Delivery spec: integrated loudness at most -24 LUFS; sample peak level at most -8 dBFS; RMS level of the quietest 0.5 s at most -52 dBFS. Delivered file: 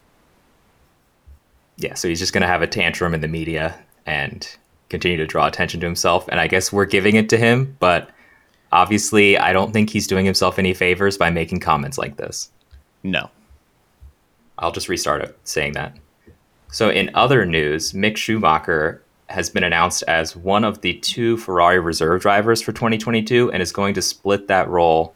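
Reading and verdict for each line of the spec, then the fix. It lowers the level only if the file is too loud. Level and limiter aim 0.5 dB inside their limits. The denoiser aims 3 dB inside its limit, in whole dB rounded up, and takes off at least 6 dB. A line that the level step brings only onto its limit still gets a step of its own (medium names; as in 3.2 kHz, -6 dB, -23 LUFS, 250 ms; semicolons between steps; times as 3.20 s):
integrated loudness -18.0 LUFS: fail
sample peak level -2.0 dBFS: fail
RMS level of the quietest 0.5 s -59 dBFS: pass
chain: trim -6.5 dB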